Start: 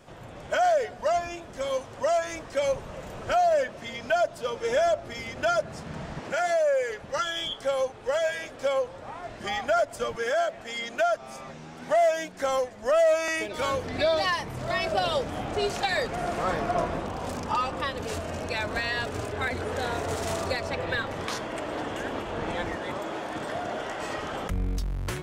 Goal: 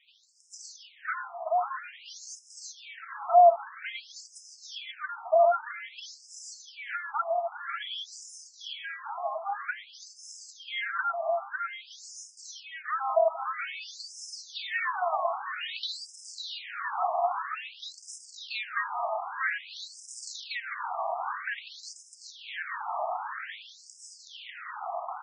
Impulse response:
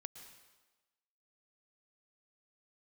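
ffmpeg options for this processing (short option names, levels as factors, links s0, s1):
-af "highpass=f=510:t=q:w=4.9,aecho=1:1:550|935|1204|1393|1525:0.631|0.398|0.251|0.158|0.1,afftfilt=real='re*between(b*sr/1024,890*pow(7100/890,0.5+0.5*sin(2*PI*0.51*pts/sr))/1.41,890*pow(7100/890,0.5+0.5*sin(2*PI*0.51*pts/sr))*1.41)':imag='im*between(b*sr/1024,890*pow(7100/890,0.5+0.5*sin(2*PI*0.51*pts/sr))/1.41,890*pow(7100/890,0.5+0.5*sin(2*PI*0.51*pts/sr))*1.41)':win_size=1024:overlap=0.75"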